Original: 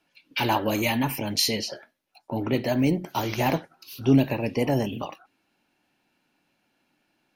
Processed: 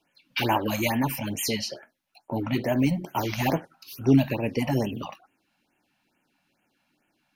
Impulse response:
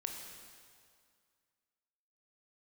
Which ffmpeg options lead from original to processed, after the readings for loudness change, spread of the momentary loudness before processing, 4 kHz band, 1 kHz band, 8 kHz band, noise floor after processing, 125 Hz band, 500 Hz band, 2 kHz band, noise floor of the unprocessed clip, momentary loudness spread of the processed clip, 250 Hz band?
-1.0 dB, 13 LU, -4.0 dB, -1.0 dB, -1.5 dB, -74 dBFS, 0.0 dB, -2.0 dB, -1.0 dB, -73 dBFS, 13 LU, -0.5 dB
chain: -af "afftfilt=real='re*(1-between(b*sr/1024,350*pow(4700/350,0.5+0.5*sin(2*PI*2.3*pts/sr))/1.41,350*pow(4700/350,0.5+0.5*sin(2*PI*2.3*pts/sr))*1.41))':imag='im*(1-between(b*sr/1024,350*pow(4700/350,0.5+0.5*sin(2*PI*2.3*pts/sr))/1.41,350*pow(4700/350,0.5+0.5*sin(2*PI*2.3*pts/sr))*1.41))':win_size=1024:overlap=0.75"

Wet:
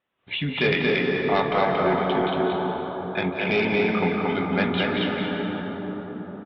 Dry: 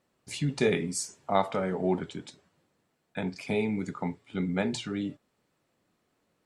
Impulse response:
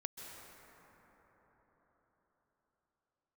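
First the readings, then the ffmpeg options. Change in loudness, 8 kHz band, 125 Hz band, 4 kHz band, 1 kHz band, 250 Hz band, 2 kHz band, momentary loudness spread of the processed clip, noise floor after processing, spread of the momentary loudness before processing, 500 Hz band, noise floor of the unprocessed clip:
+7.0 dB, under -25 dB, +5.5 dB, +11.0 dB, +9.5 dB, +6.5 dB, +13.5 dB, 9 LU, -39 dBFS, 12 LU, +8.5 dB, -76 dBFS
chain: -filter_complex "[0:a]asplit=2[a][b];[b]aecho=0:1:230:0.668[c];[a][c]amix=inputs=2:normalize=0,flanger=delay=9.5:depth=2.8:regen=79:speed=0.69:shape=triangular,dynaudnorm=f=170:g=3:m=16dB,tiltshelf=f=730:g=-6,aresample=8000,aresample=44100,aresample=11025,asoftclip=type=tanh:threshold=-11dB,aresample=44100[d];[1:a]atrim=start_sample=2205,asetrate=33957,aresample=44100[e];[d][e]afir=irnorm=-1:irlink=0"

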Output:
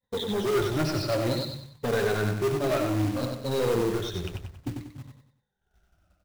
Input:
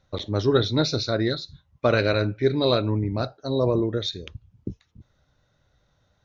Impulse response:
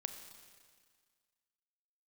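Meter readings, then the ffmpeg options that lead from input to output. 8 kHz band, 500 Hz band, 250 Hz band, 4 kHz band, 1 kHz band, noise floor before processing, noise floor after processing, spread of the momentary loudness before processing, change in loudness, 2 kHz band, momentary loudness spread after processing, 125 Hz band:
n/a, -3.0 dB, -3.5 dB, -6.5 dB, -1.5 dB, -69 dBFS, -79 dBFS, 18 LU, -4.0 dB, -3.0 dB, 12 LU, -4.0 dB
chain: -filter_complex "[0:a]afftfilt=real='re*pow(10,18/40*sin(2*PI*(1*log(max(b,1)*sr/1024/100)/log(2)-(-0.58)*(pts-256)/sr)))':imag='im*pow(10,18/40*sin(2*PI*(1*log(max(b,1)*sr/1024/100)/log(2)-(-0.58)*(pts-256)/sr)))':win_size=1024:overlap=0.75,agate=range=-33dB:threshold=-52dB:ratio=3:detection=peak,lowpass=f=1.9k:p=1,bandreject=f=73.77:t=h:w=4,bandreject=f=147.54:t=h:w=4,bandreject=f=221.31:t=h:w=4,bandreject=f=295.08:t=h:w=4,bandreject=f=368.85:t=h:w=4,bandreject=f=442.62:t=h:w=4,bandreject=f=516.39:t=h:w=4,bandreject=f=590.16:t=h:w=4,bandreject=f=663.93:t=h:w=4,asplit=2[a][b];[b]acompressor=threshold=-34dB:ratio=6,volume=0.5dB[c];[a][c]amix=inputs=2:normalize=0,asoftclip=type=tanh:threshold=-20.5dB,flanger=delay=3.8:depth=4.6:regen=-48:speed=0.33:shape=triangular,acrusher=bits=3:mode=log:mix=0:aa=0.000001,asplit=2[d][e];[e]aecho=0:1:94|188|282|376:0.562|0.202|0.0729|0.0262[f];[d][f]amix=inputs=2:normalize=0,volume=1dB"

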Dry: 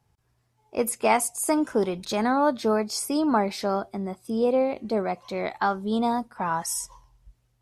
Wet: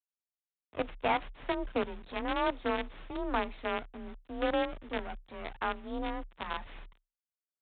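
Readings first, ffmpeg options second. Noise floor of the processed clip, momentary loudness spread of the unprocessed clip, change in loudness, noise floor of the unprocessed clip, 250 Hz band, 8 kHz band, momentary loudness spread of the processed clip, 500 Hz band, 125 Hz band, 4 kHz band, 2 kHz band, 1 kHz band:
under -85 dBFS, 8 LU, -9.5 dB, -70 dBFS, -12.0 dB, under -40 dB, 13 LU, -10.0 dB, -11.5 dB, -6.0 dB, -4.0 dB, -9.0 dB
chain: -af "acrusher=bits=4:dc=4:mix=0:aa=0.000001,afreqshift=31,aresample=8000,aresample=44100,volume=-9dB"

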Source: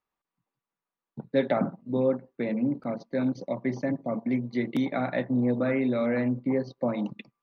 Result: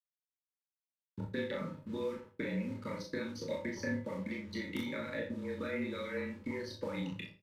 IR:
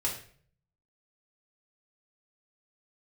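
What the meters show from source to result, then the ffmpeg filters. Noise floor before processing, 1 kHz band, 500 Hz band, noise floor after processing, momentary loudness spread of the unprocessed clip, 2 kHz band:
under -85 dBFS, -12.0 dB, -11.0 dB, under -85 dBFS, 6 LU, -4.0 dB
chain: -filter_complex "[0:a]highshelf=f=4.2k:g=9.5,afreqshift=-31,acompressor=threshold=-29dB:ratio=6,aeval=exprs='sgn(val(0))*max(abs(val(0))-0.00126,0)':c=same,acrossover=split=750|1500[a][b][c];[a]acompressor=threshold=-42dB:ratio=4[d];[b]acompressor=threshold=-56dB:ratio=4[e];[c]acompressor=threshold=-50dB:ratio=4[f];[d][e][f]amix=inputs=3:normalize=0,asplit=2[g][h];[h]adelay=37,volume=-3.5dB[i];[g][i]amix=inputs=2:normalize=0,aecho=1:1:26|47:0.562|0.282,asplit=2[j][k];[1:a]atrim=start_sample=2205,atrim=end_sample=6174[l];[k][l]afir=irnorm=-1:irlink=0,volume=-9.5dB[m];[j][m]amix=inputs=2:normalize=0,aresample=32000,aresample=44100,asuperstop=centerf=720:order=20:qfactor=4.1"

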